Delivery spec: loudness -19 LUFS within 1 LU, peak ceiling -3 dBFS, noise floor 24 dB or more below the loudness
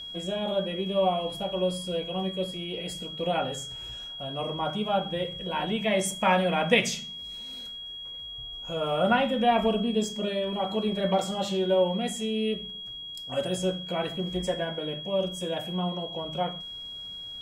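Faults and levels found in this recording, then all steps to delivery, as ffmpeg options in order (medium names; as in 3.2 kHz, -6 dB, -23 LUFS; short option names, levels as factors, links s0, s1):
steady tone 3.3 kHz; tone level -37 dBFS; loudness -29.0 LUFS; peak level -8.0 dBFS; loudness target -19.0 LUFS
-> -af "bandreject=f=3300:w=30"
-af "volume=3.16,alimiter=limit=0.708:level=0:latency=1"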